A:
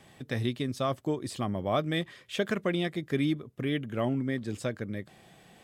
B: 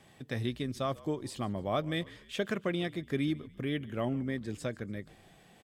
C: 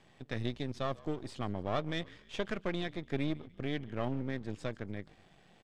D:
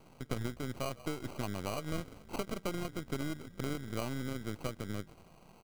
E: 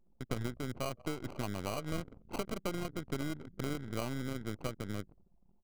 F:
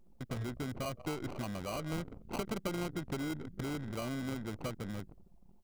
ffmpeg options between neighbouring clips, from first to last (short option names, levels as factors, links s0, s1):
-filter_complex "[0:a]asplit=4[s0][s1][s2][s3];[s1]adelay=145,afreqshift=-55,volume=0.0891[s4];[s2]adelay=290,afreqshift=-110,volume=0.0427[s5];[s3]adelay=435,afreqshift=-165,volume=0.0204[s6];[s0][s4][s5][s6]amix=inputs=4:normalize=0,volume=0.668"
-af "aeval=exprs='if(lt(val(0),0),0.251*val(0),val(0))':c=same,lowpass=6000"
-af "acompressor=threshold=0.0158:ratio=6,acrusher=samples=25:mix=1:aa=0.000001,volume=1.58"
-af "anlmdn=0.01"
-af "aeval=exprs='(tanh(70.8*val(0)+0.75)-tanh(0.75))/70.8':c=same,volume=3.98"